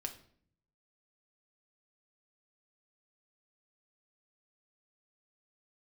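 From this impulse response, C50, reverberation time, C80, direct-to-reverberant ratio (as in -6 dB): 12.5 dB, 0.55 s, 16.0 dB, 4.0 dB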